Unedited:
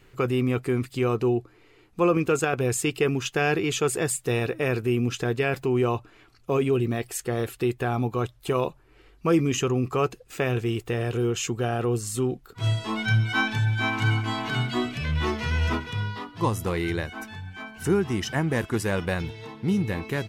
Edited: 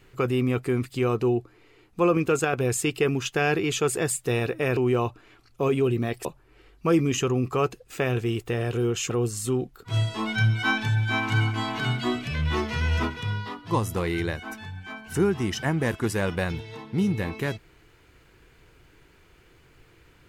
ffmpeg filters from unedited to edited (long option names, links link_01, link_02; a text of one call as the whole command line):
ffmpeg -i in.wav -filter_complex "[0:a]asplit=4[link_01][link_02][link_03][link_04];[link_01]atrim=end=4.772[link_05];[link_02]atrim=start=5.658:end=7.142[link_06];[link_03]atrim=start=8.648:end=11.502[link_07];[link_04]atrim=start=11.798[link_08];[link_05][link_06]acrossfade=duration=0.004:curve1=hsin:curve2=hsin[link_09];[link_09][link_07]acrossfade=duration=0.004:curve1=hsin:curve2=hsin[link_10];[link_10][link_08]acrossfade=duration=0.004:curve1=hsin:curve2=hsin" out.wav